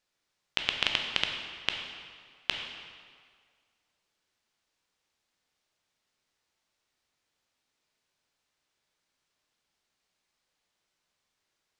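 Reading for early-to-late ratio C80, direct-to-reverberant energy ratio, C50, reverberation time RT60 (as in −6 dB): 5.5 dB, 2.5 dB, 4.5 dB, 1.9 s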